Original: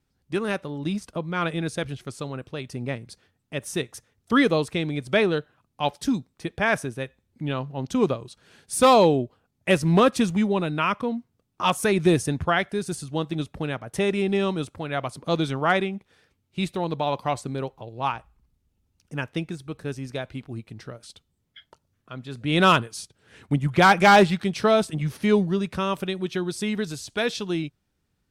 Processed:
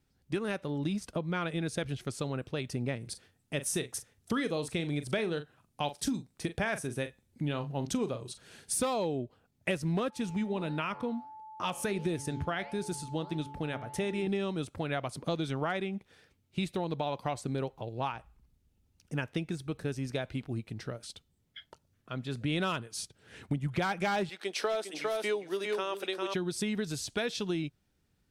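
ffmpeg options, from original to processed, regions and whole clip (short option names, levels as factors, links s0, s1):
-filter_complex "[0:a]asettb=1/sr,asplit=3[s0][s1][s2];[s0]atrim=end=3.004[s3];[s1]atrim=start=3:end=8.73,asetpts=PTS-STARTPTS,afade=t=in:d=0.004:c=qsin,afade=t=out:st=5.726:d=0.004:c=qsin,equalizer=f=9600:t=o:w=1.2:g=6,asplit=2[s4][s5];[s5]adelay=41,volume=0.251[s6];[s4][s6]amix=inputs=2:normalize=0,atrim=end_sample=252693[s7];[s2]atrim=start=8.726[s8];[s3][s7]acrossfade=d=0.004:c1=hsin:c2=qsin[s9];[s9][s8]acrossfade=d=0.004:c1=qsin:c2=hsin,asettb=1/sr,asplit=3[s10][s11][s12];[s10]atrim=end=10.104[s13];[s11]atrim=start=10.1:end=14.27,asetpts=PTS-STARTPTS,afade=t=in:d=0.004:c=qsin,afade=t=out:st=4.166:d=0.004:c=qsin,bandreject=f=140.4:t=h:w=4,bandreject=f=280.8:t=h:w=4,bandreject=f=421.2:t=h:w=4,bandreject=f=561.6:t=h:w=4,bandreject=f=702:t=h:w=4,bandreject=f=842.4:t=h:w=4,bandreject=f=982.8:t=h:w=4,bandreject=f=1123.2:t=h:w=4,bandreject=f=1263.6:t=h:w=4,bandreject=f=1404:t=h:w=4,flanger=delay=6.2:depth=6.4:regen=-89:speed=1.5:shape=sinusoidal,aeval=exprs='val(0)+0.00631*sin(2*PI*870*n/s)':c=same[s14];[s12]atrim=start=14.266[s15];[s13][s14]acrossfade=d=0.004:c1=hsin:c2=qsin[s16];[s16][s15]acrossfade=d=0.004:c1=qsin:c2=hsin,asettb=1/sr,asplit=3[s17][s18][s19];[s17]atrim=end=24.294[s20];[s18]atrim=start=24.29:end=26.34,asetpts=PTS-STARTPTS,afade=t=in:d=0.004:c=qsin,afade=t=out:st=2.046:d=0.004:c=qsin,highpass=f=360:w=0.5412,highpass=f=360:w=1.3066,asoftclip=type=hard:threshold=0.224,aecho=1:1:403:0.447,atrim=end_sample=90405[s21];[s19]atrim=start=26.336[s22];[s20][s21]acrossfade=d=0.004:c1=hsin:c2=qsin[s23];[s23][s22]acrossfade=d=0.004:c1=qsin:c2=hsin,acompressor=threshold=0.0355:ratio=6,equalizer=f=1100:t=o:w=0.53:g=-3"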